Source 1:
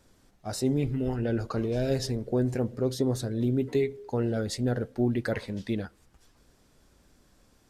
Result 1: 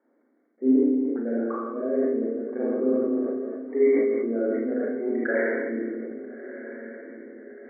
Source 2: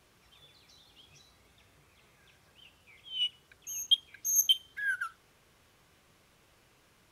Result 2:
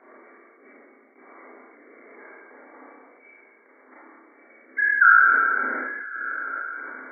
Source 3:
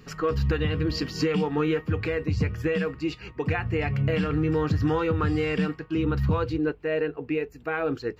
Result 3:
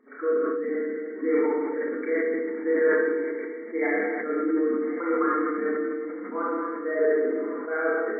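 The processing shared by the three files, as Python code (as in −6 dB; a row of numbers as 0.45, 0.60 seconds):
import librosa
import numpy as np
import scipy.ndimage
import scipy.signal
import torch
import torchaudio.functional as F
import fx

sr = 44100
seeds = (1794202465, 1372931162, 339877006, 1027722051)

y = fx.envelope_sharpen(x, sr, power=1.5)
y = fx.hum_notches(y, sr, base_hz=60, count=6)
y = fx.dynamic_eq(y, sr, hz=1600.0, q=2.0, threshold_db=-46.0, ratio=4.0, max_db=5)
y = fx.quant_companded(y, sr, bits=8)
y = fx.rotary(y, sr, hz=0.7)
y = fx.step_gate(y, sr, bpm=78, pattern='xx.x..xx.xxx.', floor_db=-60.0, edge_ms=4.5)
y = fx.brickwall_bandpass(y, sr, low_hz=230.0, high_hz=2300.0)
y = fx.echo_diffused(y, sr, ms=1335, feedback_pct=45, wet_db=-13)
y = fx.rev_schroeder(y, sr, rt60_s=1.3, comb_ms=27, drr_db=-6.5)
y = fx.sustainer(y, sr, db_per_s=24.0)
y = y * 10.0 ** (-26 / 20.0) / np.sqrt(np.mean(np.square(y)))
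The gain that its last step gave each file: −0.5, +17.0, −2.5 decibels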